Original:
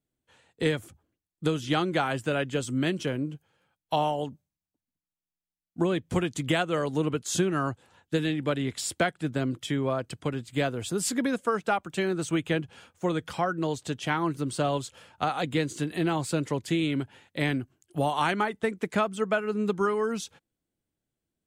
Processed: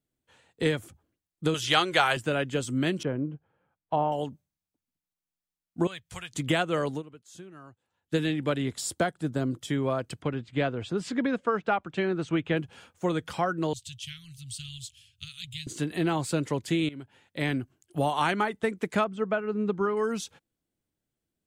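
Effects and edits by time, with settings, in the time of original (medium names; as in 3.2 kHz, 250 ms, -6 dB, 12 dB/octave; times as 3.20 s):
1.54–2.17 s: FFT filter 110 Hz 0 dB, 250 Hz -14 dB, 390 Hz 0 dB, 3 kHz +9 dB
3.03–4.12 s: low-pass 1.4 kHz
5.87–6.33 s: amplifier tone stack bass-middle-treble 10-0-10
6.91–8.14 s: dip -20.5 dB, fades 0.12 s
8.68–9.71 s: peaking EQ 2.4 kHz -8 dB 1.1 oct
10.22–12.57 s: low-pass 3.3 kHz
13.73–15.67 s: elliptic band-stop 110–3000 Hz, stop band 70 dB
16.89–17.59 s: fade in, from -17.5 dB
19.04–19.97 s: tape spacing loss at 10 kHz 22 dB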